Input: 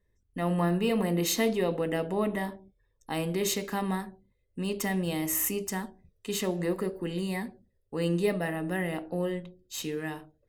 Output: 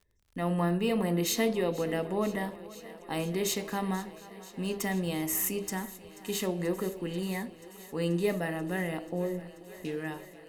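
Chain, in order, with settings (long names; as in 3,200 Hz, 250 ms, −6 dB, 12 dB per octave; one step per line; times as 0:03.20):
0:09.08–0:09.85: low-pass filter 1,100 Hz 24 dB per octave
surface crackle 34 per second −49 dBFS
on a send: feedback echo with a high-pass in the loop 485 ms, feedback 83%, high-pass 180 Hz, level −18 dB
on the sum: level −1.5 dB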